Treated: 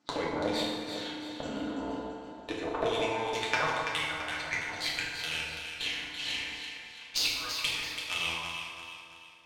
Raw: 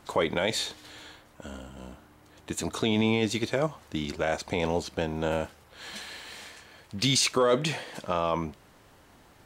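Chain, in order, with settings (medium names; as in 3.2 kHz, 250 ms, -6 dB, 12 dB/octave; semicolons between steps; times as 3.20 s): gate -47 dBFS, range -18 dB; high-pass sweep 210 Hz -> 2.6 kHz, 1.33–5.16 s; compression 5:1, threshold -37 dBFS, peak gain reduction 17 dB; hard clipper -25 dBFS, distortion -29 dB; LFO low-pass saw down 2.1 Hz 600–6300 Hz; Chebyshev shaper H 3 -12 dB, 4 -43 dB, 8 -36 dB, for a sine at -17.5 dBFS; echo whose repeats swap between lows and highs 167 ms, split 1.2 kHz, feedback 66%, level -3.5 dB; FDN reverb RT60 1.4 s, low-frequency decay 0.9×, high-frequency decay 0.75×, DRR -4.5 dB; trim +9 dB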